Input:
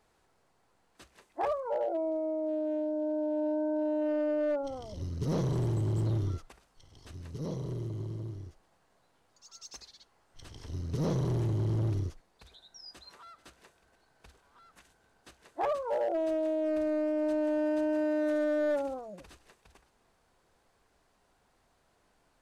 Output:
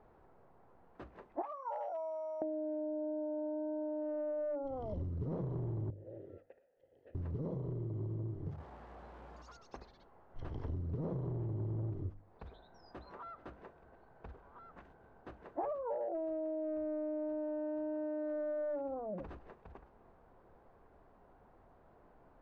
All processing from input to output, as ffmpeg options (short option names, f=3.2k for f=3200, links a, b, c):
-filter_complex "[0:a]asettb=1/sr,asplit=3[a][b][c];[a]atrim=end=1.424[d];[b]atrim=start=1.42:end=2.42,asetpts=PTS-STARTPTS,afade=t=in:d=0.004:c=qsin,afade=t=out:st=0.996:d=0.004:c=qsin,highpass=f=960:w=0.5412,highpass=f=960:w=1.3066,equalizer=f=1.6k:w=4:g=-8.5,aeval=exprs='val(0)+0.000794*sin(2*PI*5700*n/s)':c=same[e];[c]atrim=start=2.416[f];[d][e]acrossfade=d=0.004:c1=hsin:c2=qsin[g];[g][f]acrossfade=d=0.004:c1=qsin:c2=hsin,asettb=1/sr,asplit=3[h][i][j];[h]atrim=end=5.904[k];[i]atrim=start=5.9:end=7.15,asetpts=PTS-STARTPTS,afade=t=in:d=0.004:c=qsin,afade=t=out:st=1.246:d=0.004:c=qsin,acompressor=threshold=-32dB:ratio=3:attack=3.2:release=140:knee=1:detection=peak,asplit=3[l][m][n];[l]bandpass=f=530:t=q:w=8,volume=0dB[o];[m]bandpass=f=1.84k:t=q:w=8,volume=-6dB[p];[n]bandpass=f=2.48k:t=q:w=8,volume=-9dB[q];[o][p][q]amix=inputs=3:normalize=0[r];[j]atrim=start=7.146[s];[k][r]acrossfade=d=0.004:c1=hsin:c2=qsin[t];[t][s]acrossfade=d=0.004:c1=qsin:c2=hsin,asettb=1/sr,asplit=3[u][v][w];[u]atrim=end=8.464[x];[v]atrim=start=8.46:end=9.57,asetpts=PTS-STARTPTS,afade=t=in:d=0.004:c=qsin,afade=t=out:st=1.106:d=0.004:c=qsin,aeval=exprs='val(0)+0.5*0.00158*sgn(val(0))':c=same,highshelf=f=2.9k:g=8.5,afreqshift=59[y];[w]atrim=start=9.566[z];[x][y]acrossfade=d=0.004:c1=hsin:c2=qsin[aa];[aa][z]acrossfade=d=0.004:c1=qsin:c2=hsin,lowpass=1k,bandreject=f=50:t=h:w=6,bandreject=f=100:t=h:w=6,bandreject=f=150:t=h:w=6,bandreject=f=200:t=h:w=6,bandreject=f=250:t=h:w=6,bandreject=f=300:t=h:w=6,acompressor=threshold=-45dB:ratio=10,volume=9dB"